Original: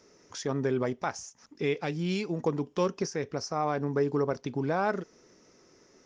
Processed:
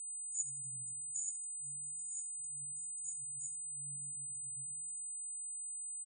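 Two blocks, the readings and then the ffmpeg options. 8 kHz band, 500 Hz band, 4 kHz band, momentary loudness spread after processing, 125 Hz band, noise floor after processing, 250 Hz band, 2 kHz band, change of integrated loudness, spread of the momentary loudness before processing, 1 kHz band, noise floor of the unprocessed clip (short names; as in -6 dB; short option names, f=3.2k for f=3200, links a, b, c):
+10.0 dB, under -40 dB, under -40 dB, 3 LU, -24.5 dB, -44 dBFS, under -35 dB, under -40 dB, -9.0 dB, 8 LU, under -40 dB, -62 dBFS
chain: -filter_complex "[0:a]aderivative,aeval=exprs='val(0)+0.002*sin(2*PI*8100*n/s)':c=same,asplit=2[a][b];[b]adelay=70,lowpass=f=2k:p=1,volume=-4dB,asplit=2[c][d];[d]adelay=70,lowpass=f=2k:p=1,volume=0.48,asplit=2[e][f];[f]adelay=70,lowpass=f=2k:p=1,volume=0.48,asplit=2[g][h];[h]adelay=70,lowpass=f=2k:p=1,volume=0.48,asplit=2[i][j];[j]adelay=70,lowpass=f=2k:p=1,volume=0.48,asplit=2[k][l];[l]adelay=70,lowpass=f=2k:p=1,volume=0.48[m];[c][e][g][i][k][m]amix=inputs=6:normalize=0[n];[a][n]amix=inputs=2:normalize=0,afftfilt=real='re*(1-between(b*sr/4096,150,6300))':imag='im*(1-between(b*sr/4096,150,6300))':win_size=4096:overlap=0.75,asplit=2[o][p];[p]asplit=4[q][r][s][t];[q]adelay=84,afreqshift=45,volume=-17.5dB[u];[r]adelay=168,afreqshift=90,volume=-23.3dB[v];[s]adelay=252,afreqshift=135,volume=-29.2dB[w];[t]adelay=336,afreqshift=180,volume=-35dB[x];[u][v][w][x]amix=inputs=4:normalize=0[y];[o][y]amix=inputs=2:normalize=0,afftfilt=real='re*eq(mod(floor(b*sr/1024/480),2),0)':imag='im*eq(mod(floor(b*sr/1024/480),2),0)':win_size=1024:overlap=0.75,volume=12dB"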